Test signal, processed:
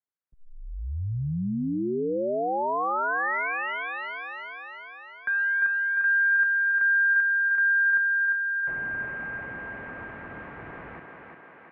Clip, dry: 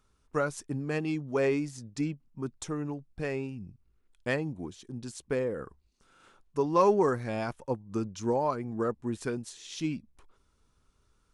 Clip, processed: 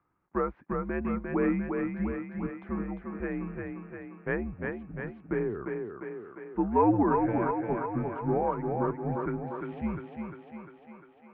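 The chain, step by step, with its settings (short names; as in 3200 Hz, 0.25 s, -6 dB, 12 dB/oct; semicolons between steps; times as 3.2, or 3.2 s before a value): mistuned SSB -93 Hz 160–2200 Hz; thinning echo 0.35 s, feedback 66%, high-pass 190 Hz, level -3.5 dB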